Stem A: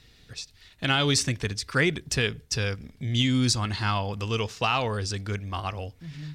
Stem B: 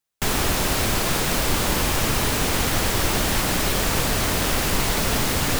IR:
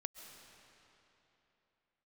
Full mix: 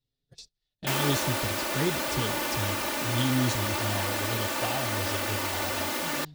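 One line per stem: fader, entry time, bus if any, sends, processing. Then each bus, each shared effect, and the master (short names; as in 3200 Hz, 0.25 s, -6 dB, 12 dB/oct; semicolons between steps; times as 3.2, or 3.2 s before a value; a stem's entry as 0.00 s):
-3.5 dB, 0.00 s, send -14.5 dB, band shelf 1600 Hz -10 dB; envelope flanger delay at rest 7.8 ms, full sweep at -19.5 dBFS
+1.5 dB, 0.65 s, no send, HPF 330 Hz 12 dB/oct; comb 3.4 ms, depth 71%; auto duck -8 dB, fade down 1.45 s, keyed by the first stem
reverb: on, RT60 3.3 s, pre-delay 95 ms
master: bell 8400 Hz -5 dB 2.3 oct; gate -49 dBFS, range -22 dB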